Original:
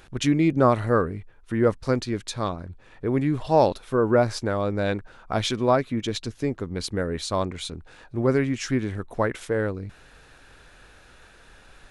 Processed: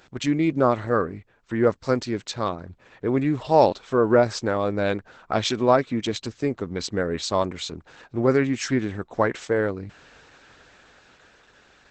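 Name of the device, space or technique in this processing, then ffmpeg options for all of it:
video call: -af "highpass=f=160:p=1,dynaudnorm=f=170:g=17:m=1.5" -ar 48000 -c:a libopus -b:a 12k

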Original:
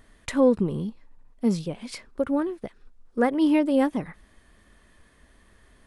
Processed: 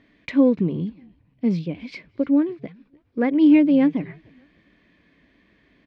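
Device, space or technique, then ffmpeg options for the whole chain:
frequency-shifting delay pedal into a guitar cabinet: -filter_complex "[0:a]asplit=3[s0][s1][s2];[s1]adelay=295,afreqshift=-140,volume=0.0668[s3];[s2]adelay=590,afreqshift=-280,volume=0.024[s4];[s0][s3][s4]amix=inputs=3:normalize=0,highpass=78,equalizer=f=83:t=q:w=4:g=-8,equalizer=f=170:t=q:w=4:g=7,equalizer=f=290:t=q:w=4:g=10,equalizer=f=850:t=q:w=4:g=-5,equalizer=f=1300:t=q:w=4:g=-7,equalizer=f=2300:t=q:w=4:g=9,lowpass=f=4500:w=0.5412,lowpass=f=4500:w=1.3066,volume=0.841"

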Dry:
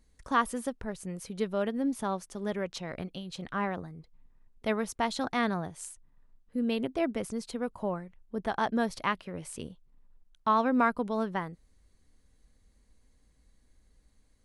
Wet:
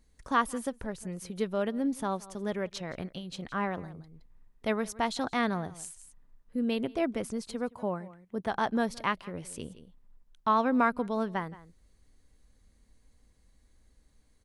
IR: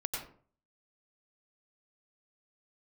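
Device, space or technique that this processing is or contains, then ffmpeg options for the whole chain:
ducked delay: -filter_complex "[0:a]asettb=1/sr,asplit=3[s0][s1][s2];[s0]atrim=end=7.694[s3];[s1]atrim=start=7.69:end=8.47,asetpts=PTS-STARTPTS,afade=t=in:d=0.004:c=qsin,afade=t=out:st=0.776:d=0.004:c=qsin,highpass=94[s4];[s2]atrim=start=8.466[s5];[s3][s4]acrossfade=d=0.004:c1=hsin:c2=qsin[s6];[s6][s5]acrossfade=d=0.004:c1=qsin:c2=hsin,asplit=3[s7][s8][s9];[s8]adelay=169,volume=0.562[s10];[s9]apad=whole_len=644583[s11];[s10][s11]sidechaincompress=threshold=0.00282:ratio=4:attack=5.5:release=255[s12];[s7][s12]amix=inputs=2:normalize=0"

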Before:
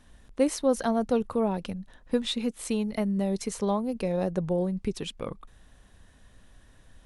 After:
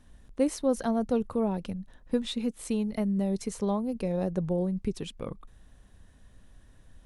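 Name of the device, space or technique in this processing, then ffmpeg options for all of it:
exciter from parts: -filter_complex "[0:a]asplit=2[s0][s1];[s1]highpass=4700,asoftclip=type=tanh:threshold=0.0266,volume=0.237[s2];[s0][s2]amix=inputs=2:normalize=0,lowshelf=f=410:g=6,volume=0.562"

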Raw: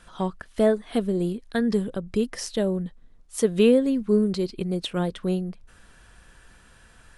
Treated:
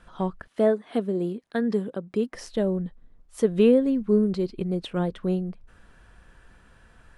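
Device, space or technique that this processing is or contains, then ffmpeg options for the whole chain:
through cloth: -filter_complex "[0:a]highshelf=f=3100:g=-12,asettb=1/sr,asplit=3[s0][s1][s2];[s0]atrim=end=0.474[s3];[s1]atrim=start=0.47:end=2.34,asetpts=PTS-STARTPTS,afade=t=in:d=0.004:c=qsin,afade=t=out:st=1.866:d=0.004:c=qsin,highpass=200[s4];[s2]atrim=start=2.336[s5];[s3][s4]acrossfade=d=0.004:c1=hsin:c2=qsin[s6];[s6][s5]acrossfade=d=0.004:c1=qsin:c2=hsin"

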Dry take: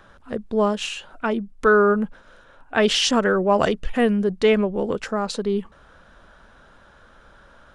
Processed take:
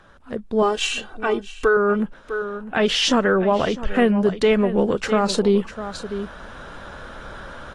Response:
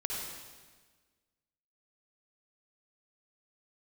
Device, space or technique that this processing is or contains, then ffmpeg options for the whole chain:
low-bitrate web radio: -filter_complex "[0:a]asettb=1/sr,asplit=3[s0][s1][s2];[s0]atrim=end=0.624[s3];[s1]atrim=start=0.62:end=1.77,asetpts=PTS-STARTPTS,afade=t=in:d=0.004:c=qsin,afade=t=out:st=1.146:d=0.004:c=qsin,aecho=1:1:2.6:0.76,atrim=end_sample=50715[s4];[s2]atrim=start=1.766[s5];[s3][s4]acrossfade=d=0.004:c1=hsin:c2=qsin[s6];[s6][s5]acrossfade=d=0.004:c1=qsin:c2=hsin,asettb=1/sr,asplit=3[s7][s8][s9];[s7]atrim=end=2.764[s10];[s8]atrim=start=2.76:end=4.22,asetpts=PTS-STARTPTS,afade=t=in:d=0.004:c=qsin,afade=t=out:st=1.456:d=0.004:c=qsin,equalizer=f=8700:w=0.73:g=-5.5[s11];[s9]atrim=start=4.216[s12];[s10][s11]acrossfade=d=0.004:c1=hsin:c2=qsin[s13];[s13][s12]acrossfade=d=0.004:c1=qsin:c2=hsin,aecho=1:1:652:0.168,dynaudnorm=f=220:g=7:m=5.01,alimiter=limit=0.422:level=0:latency=1:release=318,volume=0.891" -ar 32000 -c:a aac -b:a 32k

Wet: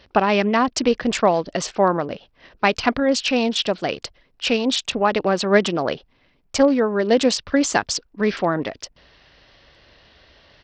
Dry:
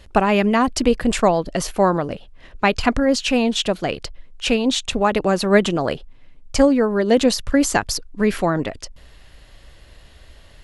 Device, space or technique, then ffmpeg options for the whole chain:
Bluetooth headset: -af "highpass=f=220:p=1,aresample=16000,aresample=44100" -ar 44100 -c:a sbc -b:a 64k

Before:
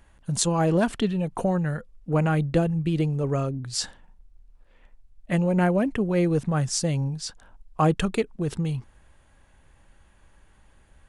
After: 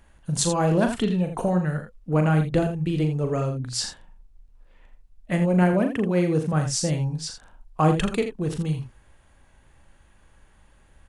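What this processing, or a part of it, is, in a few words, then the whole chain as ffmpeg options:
slapback doubling: -filter_complex "[0:a]asettb=1/sr,asplit=3[s0][s1][s2];[s0]atrim=end=5.734[s3];[s1]atrim=start=5.73:end=6.53,asetpts=PTS-STARTPTS,afade=t=in:d=0.004:c=qsin,afade=t=out:st=0.796:d=0.004:c=qsin,highpass=100[s4];[s2]atrim=start=6.526[s5];[s3][s4]acrossfade=d=0.004:c1=hsin:c2=qsin[s6];[s6][s5]acrossfade=d=0.004:c1=qsin:c2=hsin,asplit=3[s7][s8][s9];[s8]adelay=39,volume=0.422[s10];[s9]adelay=82,volume=0.355[s11];[s7][s10][s11]amix=inputs=3:normalize=0"

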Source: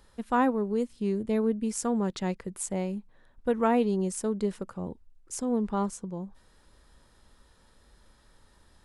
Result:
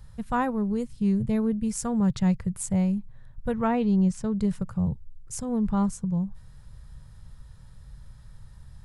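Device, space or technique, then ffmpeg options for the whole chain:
exciter from parts: -filter_complex "[0:a]asplit=2[s0][s1];[s1]highpass=f=2900:w=0.5412,highpass=f=2900:w=1.3066,asoftclip=type=tanh:threshold=0.0422,volume=0.224[s2];[s0][s2]amix=inputs=2:normalize=0,asettb=1/sr,asplit=3[s3][s4][s5];[s3]atrim=end=3.544[s6];[s4]atrim=start=3.54:end=4.37,asetpts=PTS-STARTPTS,afade=t=in:d=0.004:c=qsin,afade=t=out:st=0.826:d=0.004:c=qsin,lowpass=5200[s7];[s5]atrim=start=4.366[s8];[s6][s7]acrossfade=d=0.004:c1=hsin:c2=qsin[s9];[s9][s8]acrossfade=d=0.004:c1=qsin:c2=hsin,lowshelf=f=200:t=q:w=3:g=14"

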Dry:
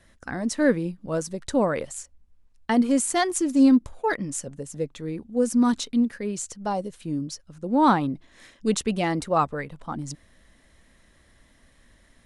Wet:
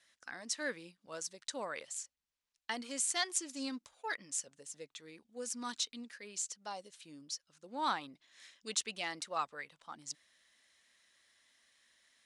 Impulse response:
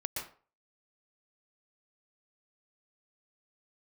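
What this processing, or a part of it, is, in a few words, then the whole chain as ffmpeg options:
piezo pickup straight into a mixer: -af "lowpass=5200,aderivative,volume=1.41"

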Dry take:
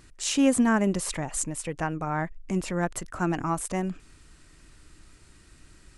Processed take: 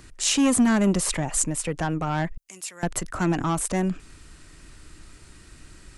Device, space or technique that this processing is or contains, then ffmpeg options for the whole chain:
one-band saturation: -filter_complex "[0:a]asettb=1/sr,asplit=3[s0][s1][s2];[s0]atrim=end=2.374[s3];[s1]atrim=start=2.37:end=2.83,asetpts=PTS-STARTPTS,afade=t=in:d=0.004:c=qsin,afade=t=out:st=0.456:d=0.004:c=qsin,aderivative[s4];[s2]atrim=start=2.826[s5];[s3][s4]acrossfade=d=0.004:c1=hsin:c2=qsin[s6];[s6][s5]acrossfade=d=0.004:c1=qsin:c2=hsin,acrossover=split=210|2700[s7][s8][s9];[s8]asoftclip=type=tanh:threshold=0.0447[s10];[s7][s10][s9]amix=inputs=3:normalize=0,volume=2"

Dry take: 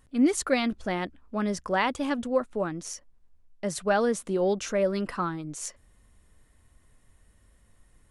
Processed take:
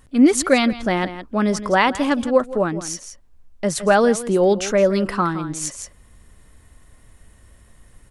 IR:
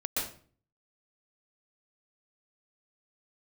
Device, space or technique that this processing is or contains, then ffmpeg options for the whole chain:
ducked delay: -filter_complex "[0:a]asplit=3[s0][s1][s2];[s1]adelay=166,volume=0.75[s3];[s2]apad=whole_len=364939[s4];[s3][s4]sidechaincompress=threshold=0.02:ratio=16:attack=27:release=1120[s5];[s0][s5]amix=inputs=2:normalize=0,volume=2.82"

